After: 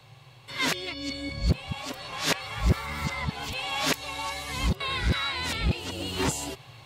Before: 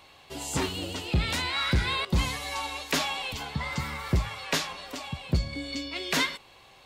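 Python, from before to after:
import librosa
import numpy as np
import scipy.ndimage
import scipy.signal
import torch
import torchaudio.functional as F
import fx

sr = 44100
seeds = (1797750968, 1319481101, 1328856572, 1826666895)

y = np.flip(x).copy()
y = fx.rider(y, sr, range_db=5, speed_s=2.0)
y = fx.dmg_noise_band(y, sr, seeds[0], low_hz=100.0, high_hz=150.0, level_db=-53.0)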